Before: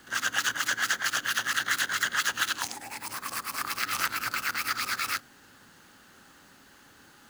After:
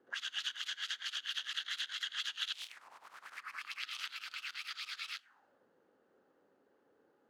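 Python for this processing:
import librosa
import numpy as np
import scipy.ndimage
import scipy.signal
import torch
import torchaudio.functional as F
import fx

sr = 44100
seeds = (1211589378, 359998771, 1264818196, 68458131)

y = fx.spec_clip(x, sr, under_db=24, at=(2.52, 3.37), fade=0.02)
y = fx.auto_wah(y, sr, base_hz=410.0, top_hz=3300.0, q=3.4, full_db=-28.0, direction='up')
y = y * 10.0 ** (-3.0 / 20.0)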